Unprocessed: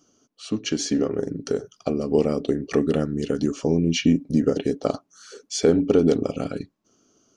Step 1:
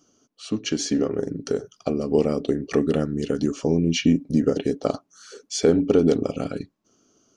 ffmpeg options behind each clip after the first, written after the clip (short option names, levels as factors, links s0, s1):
-af anull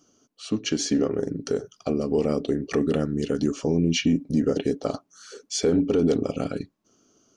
-af "alimiter=limit=0.237:level=0:latency=1:release=12"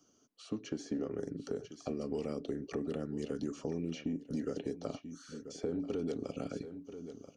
-filter_complex "[0:a]aecho=1:1:985:0.119,acrossover=split=210|600|1300[s0][s1][s2][s3];[s0]acompressor=threshold=0.0112:ratio=4[s4];[s1]acompressor=threshold=0.0316:ratio=4[s5];[s2]acompressor=threshold=0.00708:ratio=4[s6];[s3]acompressor=threshold=0.00447:ratio=4[s7];[s4][s5][s6][s7]amix=inputs=4:normalize=0,volume=0.447"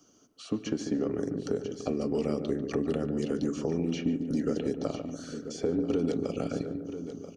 -filter_complex "[0:a]asplit=2[s0][s1];[s1]adelay=145,lowpass=f=1100:p=1,volume=0.447,asplit=2[s2][s3];[s3]adelay=145,lowpass=f=1100:p=1,volume=0.54,asplit=2[s4][s5];[s5]adelay=145,lowpass=f=1100:p=1,volume=0.54,asplit=2[s6][s7];[s7]adelay=145,lowpass=f=1100:p=1,volume=0.54,asplit=2[s8][s9];[s9]adelay=145,lowpass=f=1100:p=1,volume=0.54,asplit=2[s10][s11];[s11]adelay=145,lowpass=f=1100:p=1,volume=0.54,asplit=2[s12][s13];[s13]adelay=145,lowpass=f=1100:p=1,volume=0.54[s14];[s0][s2][s4][s6][s8][s10][s12][s14]amix=inputs=8:normalize=0,volume=2.24"